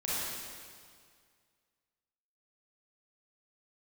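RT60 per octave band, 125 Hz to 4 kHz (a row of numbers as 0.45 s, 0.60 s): 2.1 s, 2.0 s, 2.0 s, 2.0 s, 1.9 s, 1.9 s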